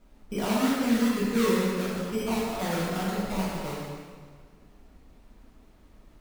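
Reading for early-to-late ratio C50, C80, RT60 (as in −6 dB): −1.5 dB, 0.5 dB, 1.7 s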